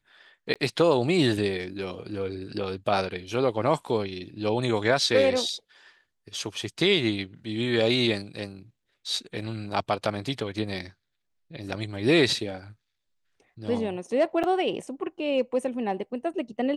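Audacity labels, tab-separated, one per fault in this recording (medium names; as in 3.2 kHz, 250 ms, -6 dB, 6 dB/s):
0.540000	0.560000	dropout 17 ms
14.430000	14.440000	dropout 7 ms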